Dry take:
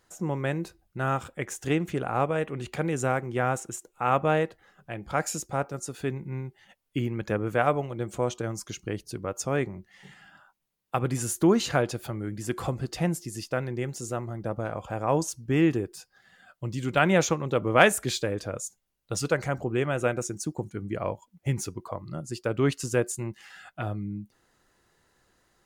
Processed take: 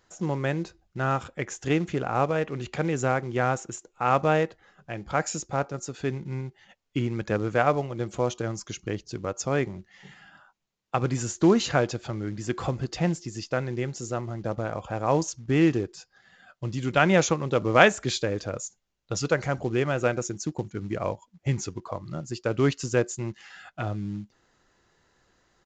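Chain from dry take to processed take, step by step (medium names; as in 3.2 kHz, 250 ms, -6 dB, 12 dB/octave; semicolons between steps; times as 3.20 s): in parallel at -3.5 dB: short-mantissa float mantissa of 2-bit; on the sum: resampled via 16 kHz; trim -3 dB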